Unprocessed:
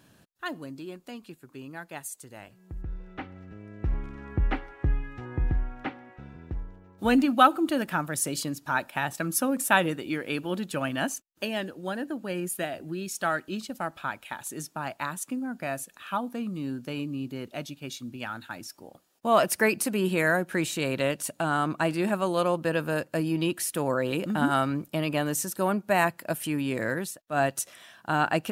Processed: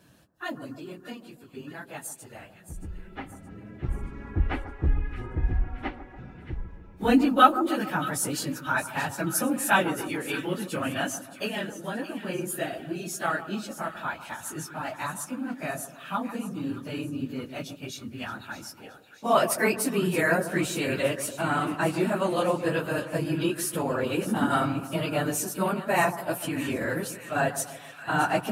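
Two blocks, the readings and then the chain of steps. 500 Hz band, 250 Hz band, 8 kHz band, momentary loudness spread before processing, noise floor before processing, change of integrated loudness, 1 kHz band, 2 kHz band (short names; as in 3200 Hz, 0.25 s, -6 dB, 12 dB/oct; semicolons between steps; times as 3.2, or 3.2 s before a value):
0.0 dB, +0.5 dB, +0.5 dB, 16 LU, -61 dBFS, +0.5 dB, +1.0 dB, +0.5 dB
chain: phase scrambler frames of 50 ms; split-band echo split 1400 Hz, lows 0.143 s, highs 0.623 s, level -12.5 dB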